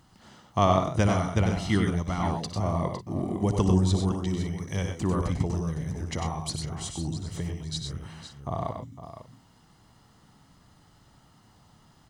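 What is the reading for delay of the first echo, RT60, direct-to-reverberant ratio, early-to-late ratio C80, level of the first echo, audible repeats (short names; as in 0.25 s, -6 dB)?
59 ms, none, none, none, -14.5 dB, 5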